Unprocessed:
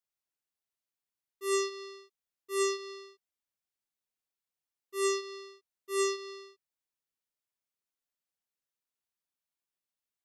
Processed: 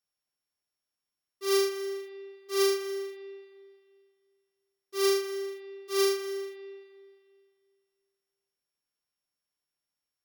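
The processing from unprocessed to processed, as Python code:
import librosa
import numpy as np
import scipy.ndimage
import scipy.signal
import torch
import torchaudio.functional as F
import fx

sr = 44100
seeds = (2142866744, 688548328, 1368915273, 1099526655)

y = np.r_[np.sort(x[:len(x) // 8 * 8].reshape(-1, 8), axis=1).ravel(), x[len(x) // 8 * 8:]]
y = fx.rev_spring(y, sr, rt60_s=2.1, pass_ms=(43, 51), chirp_ms=25, drr_db=8.5)
y = y * 10.0 ** (2.5 / 20.0)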